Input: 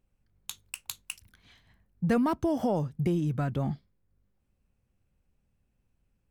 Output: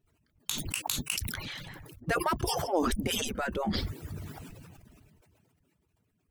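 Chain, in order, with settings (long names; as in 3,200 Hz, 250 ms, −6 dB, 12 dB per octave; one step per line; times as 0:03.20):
harmonic-percussive split with one part muted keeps percussive
level that may fall only so fast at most 23 dB per second
level +4 dB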